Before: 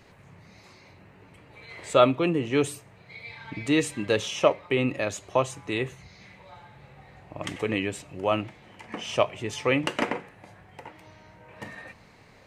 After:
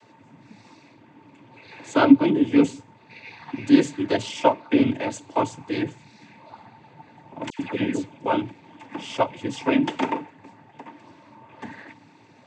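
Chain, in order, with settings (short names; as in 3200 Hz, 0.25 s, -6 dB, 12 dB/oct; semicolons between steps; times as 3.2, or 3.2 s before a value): noise vocoder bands 16; small resonant body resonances 280/900 Hz, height 15 dB, ringing for 65 ms; 7.5–8.26 dispersion lows, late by 94 ms, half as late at 1600 Hz; gain -1.5 dB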